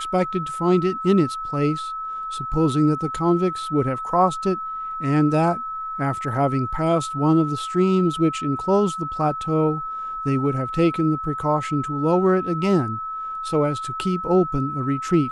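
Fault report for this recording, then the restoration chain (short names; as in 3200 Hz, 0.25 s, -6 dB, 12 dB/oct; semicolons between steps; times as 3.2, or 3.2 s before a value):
tone 1300 Hz -27 dBFS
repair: notch 1300 Hz, Q 30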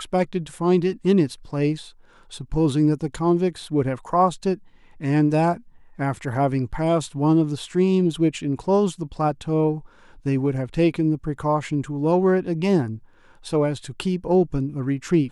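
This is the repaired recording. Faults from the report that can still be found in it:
none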